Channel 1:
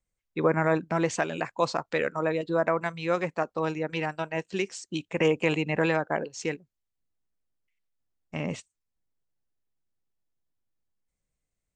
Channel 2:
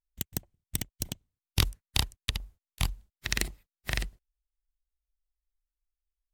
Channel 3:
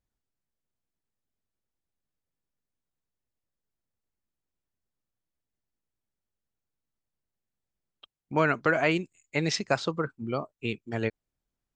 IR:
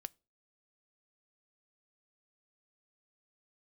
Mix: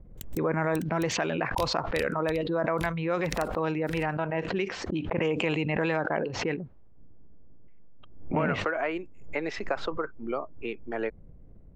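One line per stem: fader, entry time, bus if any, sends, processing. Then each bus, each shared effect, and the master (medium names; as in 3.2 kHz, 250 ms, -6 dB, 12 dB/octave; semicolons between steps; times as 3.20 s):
-6.0 dB, 0.00 s, no send, level-controlled noise filter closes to 400 Hz, open at -20.5 dBFS; low-pass 4.4 kHz 12 dB/octave; level flattener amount 70%
-13.5 dB, 0.00 s, no send, none
+2.5 dB, 0.00 s, no send, three-band isolator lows -24 dB, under 290 Hz, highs -21 dB, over 2.3 kHz; compression 5:1, threshold -28 dBFS, peak gain reduction 8 dB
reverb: none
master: swell ahead of each attack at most 71 dB/s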